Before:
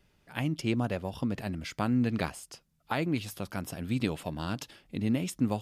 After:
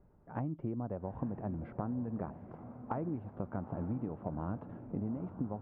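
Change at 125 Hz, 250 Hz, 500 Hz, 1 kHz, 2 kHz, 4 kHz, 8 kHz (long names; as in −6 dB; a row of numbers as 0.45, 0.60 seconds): −6.0 dB, −7.5 dB, −6.0 dB, −6.0 dB, −19.0 dB, below −40 dB, below −35 dB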